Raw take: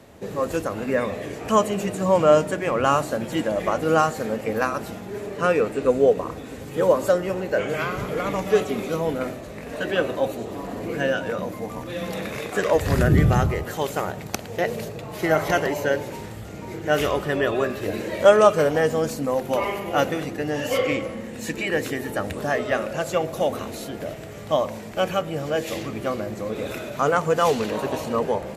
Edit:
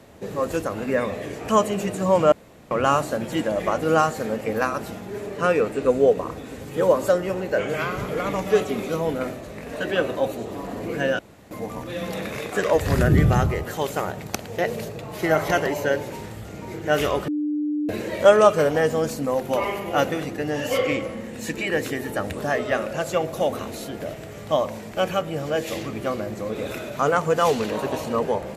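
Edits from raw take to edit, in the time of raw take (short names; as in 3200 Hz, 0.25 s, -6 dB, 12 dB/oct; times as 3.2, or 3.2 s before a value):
2.32–2.71 room tone
11.19–11.51 room tone
17.28–17.89 bleep 298 Hz -21.5 dBFS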